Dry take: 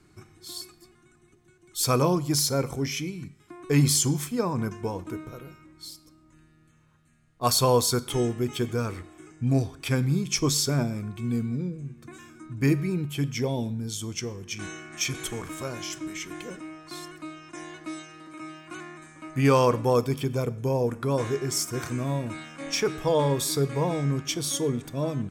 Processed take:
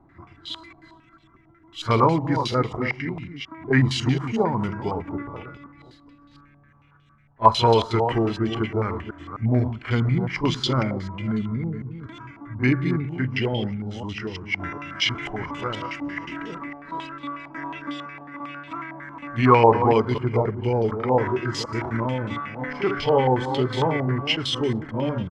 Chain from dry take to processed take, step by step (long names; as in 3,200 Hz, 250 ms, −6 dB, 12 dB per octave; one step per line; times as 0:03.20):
delay that plays each chunk backwards 246 ms, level −9 dB
echo ahead of the sound 32 ms −13 dB
pitch shifter −1.5 semitones
low-pass on a step sequencer 11 Hz 800–3,300 Hz
level +2 dB